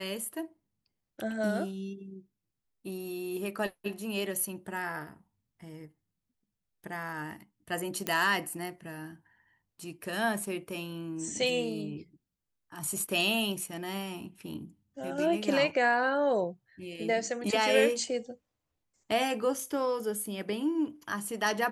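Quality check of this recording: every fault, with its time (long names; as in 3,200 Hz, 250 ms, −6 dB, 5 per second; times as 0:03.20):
0:08.07: click −13 dBFS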